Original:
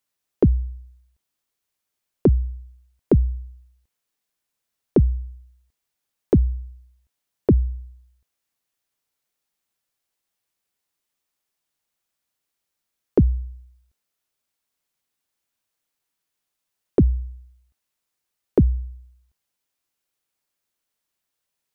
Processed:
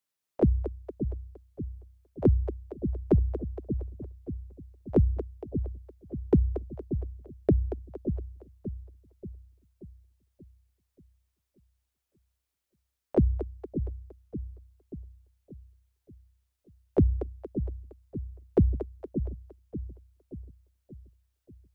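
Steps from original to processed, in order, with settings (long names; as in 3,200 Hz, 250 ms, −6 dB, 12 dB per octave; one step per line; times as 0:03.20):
echo with a time of its own for lows and highs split 370 Hz, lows 582 ms, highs 232 ms, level −8 dB
pitch-shifted copies added +7 semitones −12 dB
level −6 dB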